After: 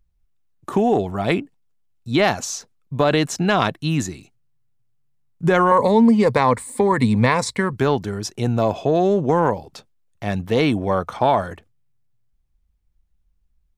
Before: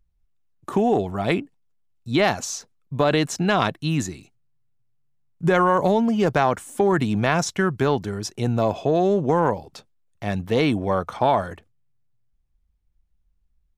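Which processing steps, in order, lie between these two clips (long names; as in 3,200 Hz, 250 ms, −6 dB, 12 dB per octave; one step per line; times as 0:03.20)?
0:05.71–0:07.73: EQ curve with evenly spaced ripples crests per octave 0.96, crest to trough 12 dB
level +2 dB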